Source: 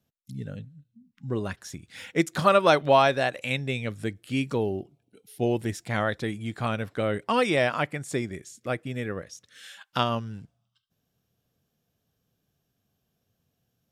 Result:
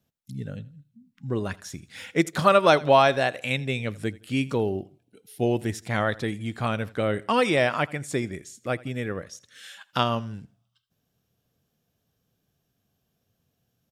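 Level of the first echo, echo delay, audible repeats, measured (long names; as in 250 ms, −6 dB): −21.5 dB, 83 ms, 2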